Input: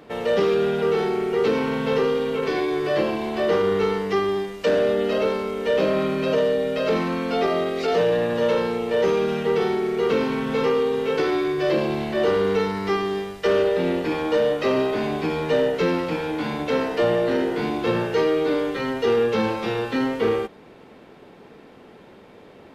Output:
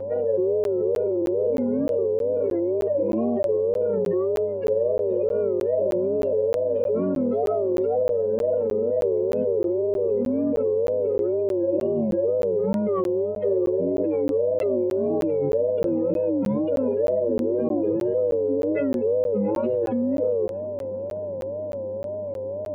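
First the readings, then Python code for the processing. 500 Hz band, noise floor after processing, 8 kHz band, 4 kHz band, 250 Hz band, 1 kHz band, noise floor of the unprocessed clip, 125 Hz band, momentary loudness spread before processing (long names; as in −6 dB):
−0.5 dB, −30 dBFS, can't be measured, below −20 dB, −0.5 dB, −11.0 dB, −47 dBFS, −3.5 dB, 4 LU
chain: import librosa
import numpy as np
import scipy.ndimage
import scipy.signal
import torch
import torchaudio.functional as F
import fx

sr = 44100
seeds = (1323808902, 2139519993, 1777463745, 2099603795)

p1 = fx.spec_expand(x, sr, power=3.2)
p2 = fx.over_compress(p1, sr, threshold_db=-27.0, ratio=-0.5)
p3 = p1 + (p2 * 10.0 ** (-2.0 / 20.0))
p4 = p3 + 10.0 ** (-24.0 / 20.0) * np.sin(2.0 * np.pi * 570.0 * np.arange(len(p3)) / sr)
p5 = fx.wow_flutter(p4, sr, seeds[0], rate_hz=2.1, depth_cents=140.0)
p6 = fx.dmg_buzz(p5, sr, base_hz=100.0, harmonics=10, level_db=-40.0, tilt_db=-5, odd_only=False)
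p7 = p6 + fx.echo_feedback(p6, sr, ms=679, feedback_pct=46, wet_db=-22.5, dry=0)
p8 = fx.buffer_crackle(p7, sr, first_s=0.64, period_s=0.31, block=512, kind='zero')
y = p8 * 10.0 ** (-3.5 / 20.0)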